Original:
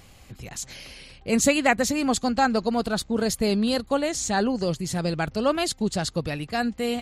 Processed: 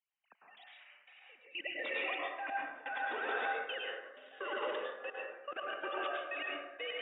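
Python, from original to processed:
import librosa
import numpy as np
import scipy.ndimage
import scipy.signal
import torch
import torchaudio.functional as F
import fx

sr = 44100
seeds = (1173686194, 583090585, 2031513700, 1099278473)

y = fx.sine_speech(x, sr)
y = scipy.signal.sosfilt(scipy.signal.butter(2, 1200.0, 'highpass', fs=sr, output='sos'), y)
y = fx.echo_diffused(y, sr, ms=487, feedback_pct=49, wet_db=-6.5)
y = fx.step_gate(y, sr, bpm=126, pattern='..x.xxx..x.', floor_db=-24.0, edge_ms=4.5)
y = fx.level_steps(y, sr, step_db=20)
y = fx.rev_plate(y, sr, seeds[0], rt60_s=0.97, hf_ratio=0.45, predelay_ms=90, drr_db=-3.0)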